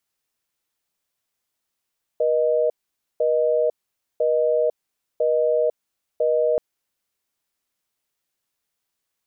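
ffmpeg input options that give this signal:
ffmpeg -f lavfi -i "aevalsrc='0.106*(sin(2*PI*480*t)+sin(2*PI*620*t))*clip(min(mod(t,1),0.5-mod(t,1))/0.005,0,1)':duration=4.38:sample_rate=44100" out.wav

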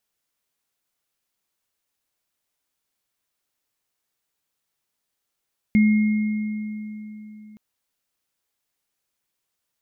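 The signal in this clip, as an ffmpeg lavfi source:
ffmpeg -f lavfi -i "aevalsrc='0.251*pow(10,-3*t/3.61)*sin(2*PI*213*t)+0.0501*pow(10,-3*t/2.76)*sin(2*PI*2140*t)':duration=1.82:sample_rate=44100" out.wav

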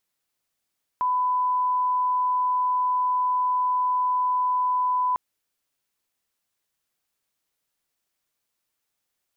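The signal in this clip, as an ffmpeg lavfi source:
ffmpeg -f lavfi -i "sine=frequency=1000:duration=4.15:sample_rate=44100,volume=-1.94dB" out.wav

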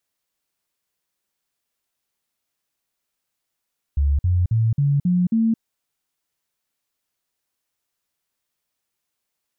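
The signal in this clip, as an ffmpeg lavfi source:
ffmpeg -f lavfi -i "aevalsrc='0.178*clip(min(mod(t,0.27),0.22-mod(t,0.27))/0.005,0,1)*sin(2*PI*71*pow(2,floor(t/0.27)/3)*mod(t,0.27))':duration=1.62:sample_rate=44100" out.wav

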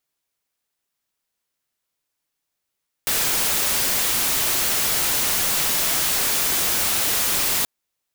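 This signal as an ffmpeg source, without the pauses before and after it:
ffmpeg -f lavfi -i "anoisesrc=color=white:amplitude=0.154:duration=4.58:sample_rate=44100:seed=1" out.wav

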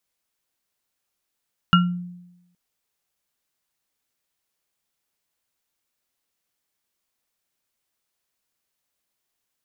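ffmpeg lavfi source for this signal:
ffmpeg -f lavfi -i "aevalsrc='0.251*pow(10,-3*t/0.94)*sin(2*PI*177*t)+0.299*pow(10,-3*t/0.24)*sin(2*PI*1370*t)+0.158*pow(10,-3*t/0.21)*sin(2*PI*2860*t)':duration=0.82:sample_rate=44100" out.wav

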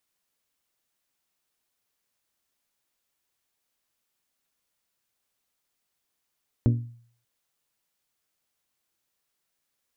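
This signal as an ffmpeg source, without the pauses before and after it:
ffmpeg -f lavfi -i "aevalsrc='0.178*pow(10,-3*t/0.54)*sin(2*PI*118*t)+0.1*pow(10,-3*t/0.332)*sin(2*PI*236*t)+0.0562*pow(10,-3*t/0.293)*sin(2*PI*283.2*t)+0.0316*pow(10,-3*t/0.25)*sin(2*PI*354*t)+0.0178*pow(10,-3*t/0.205)*sin(2*PI*472*t)+0.01*pow(10,-3*t/0.175)*sin(2*PI*590*t)':duration=0.59:sample_rate=44100" out.wav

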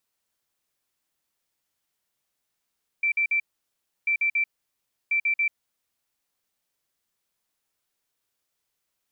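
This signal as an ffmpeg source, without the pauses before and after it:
ffmpeg -f lavfi -i "aevalsrc='0.1*sin(2*PI*2340*t)*clip(min(mod(mod(t,1.04),0.14),0.09-mod(mod(t,1.04),0.14))/0.005,0,1)*lt(mod(t,1.04),0.42)':duration=3.12:sample_rate=44100" out.wav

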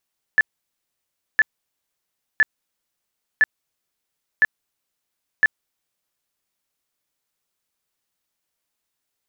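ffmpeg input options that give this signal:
ffmpeg -f lavfi -i "aevalsrc='0.299*sin(2*PI*1740*mod(t,1.01))*lt(mod(t,1.01),50/1740)':duration=6.06:sample_rate=44100" out.wav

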